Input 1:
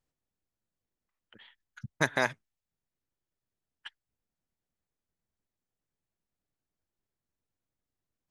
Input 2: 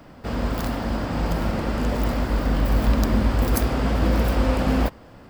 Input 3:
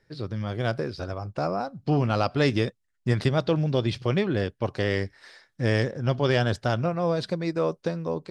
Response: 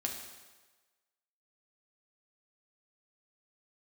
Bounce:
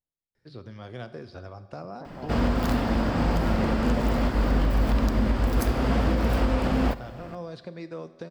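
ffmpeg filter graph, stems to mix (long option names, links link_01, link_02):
-filter_complex "[0:a]lowpass=frequency=1000:width=0.5412,lowpass=frequency=1000:width=1.3066,alimiter=limit=-19dB:level=0:latency=1,volume=-11.5dB[link_01];[1:a]highshelf=frequency=8600:gain=-8,adelay=2050,volume=1.5dB,asplit=2[link_02][link_03];[link_03]volume=-11.5dB[link_04];[2:a]acrossover=split=350|4100[link_05][link_06][link_07];[link_05]acompressor=threshold=-32dB:ratio=4[link_08];[link_06]acompressor=threshold=-30dB:ratio=4[link_09];[link_07]acompressor=threshold=-54dB:ratio=4[link_10];[link_08][link_09][link_10]amix=inputs=3:normalize=0,adelay=350,volume=-11dB,asplit=2[link_11][link_12];[link_12]volume=-6.5dB[link_13];[3:a]atrim=start_sample=2205[link_14];[link_04][link_13]amix=inputs=2:normalize=0[link_15];[link_15][link_14]afir=irnorm=-1:irlink=0[link_16];[link_01][link_02][link_11][link_16]amix=inputs=4:normalize=0,alimiter=limit=-13.5dB:level=0:latency=1:release=436"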